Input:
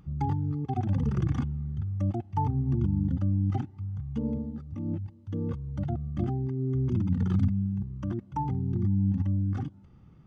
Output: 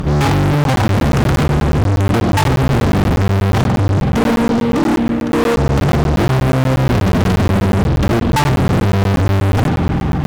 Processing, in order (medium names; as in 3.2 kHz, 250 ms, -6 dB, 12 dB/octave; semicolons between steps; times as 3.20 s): 4.02–5.57 s: high-pass 270 Hz 24 dB/octave; spring tank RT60 3.7 s, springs 47 ms, chirp 65 ms, DRR 8 dB; fuzz box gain 50 dB, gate -59 dBFS; crackling interface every 0.12 s, samples 512, zero, from 0.64 s; trim +1 dB